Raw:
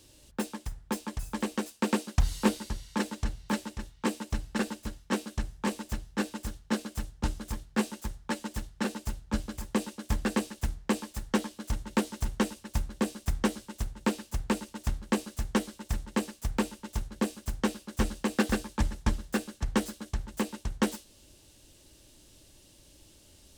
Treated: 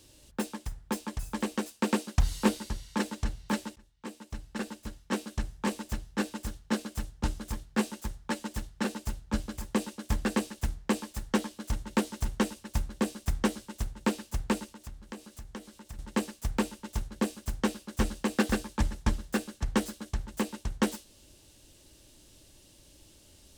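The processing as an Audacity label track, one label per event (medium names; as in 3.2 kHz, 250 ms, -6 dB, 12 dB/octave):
3.760000	5.420000	fade in, from -22 dB
14.660000	15.990000	compression 2:1, threshold -50 dBFS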